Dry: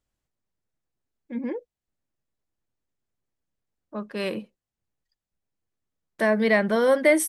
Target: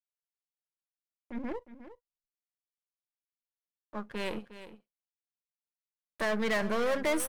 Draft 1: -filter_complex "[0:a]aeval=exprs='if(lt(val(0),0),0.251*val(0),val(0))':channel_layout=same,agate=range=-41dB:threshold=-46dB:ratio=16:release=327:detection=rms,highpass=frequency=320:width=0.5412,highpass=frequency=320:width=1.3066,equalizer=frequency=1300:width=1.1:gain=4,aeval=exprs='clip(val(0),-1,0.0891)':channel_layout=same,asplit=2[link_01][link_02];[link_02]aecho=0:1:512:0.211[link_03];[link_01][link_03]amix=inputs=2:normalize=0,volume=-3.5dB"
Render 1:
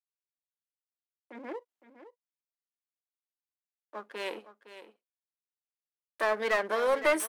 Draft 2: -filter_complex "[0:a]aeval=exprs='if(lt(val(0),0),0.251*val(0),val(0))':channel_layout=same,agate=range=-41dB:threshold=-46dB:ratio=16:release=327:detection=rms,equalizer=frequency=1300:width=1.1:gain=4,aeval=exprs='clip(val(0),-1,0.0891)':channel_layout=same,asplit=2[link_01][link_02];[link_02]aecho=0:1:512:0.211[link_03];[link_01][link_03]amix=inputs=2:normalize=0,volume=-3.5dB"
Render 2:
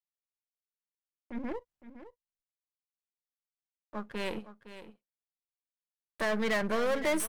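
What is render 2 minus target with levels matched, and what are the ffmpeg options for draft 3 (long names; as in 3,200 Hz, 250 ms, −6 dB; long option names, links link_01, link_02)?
echo 153 ms late
-filter_complex "[0:a]aeval=exprs='if(lt(val(0),0),0.251*val(0),val(0))':channel_layout=same,agate=range=-41dB:threshold=-46dB:ratio=16:release=327:detection=rms,equalizer=frequency=1300:width=1.1:gain=4,aeval=exprs='clip(val(0),-1,0.0891)':channel_layout=same,asplit=2[link_01][link_02];[link_02]aecho=0:1:359:0.211[link_03];[link_01][link_03]amix=inputs=2:normalize=0,volume=-3.5dB"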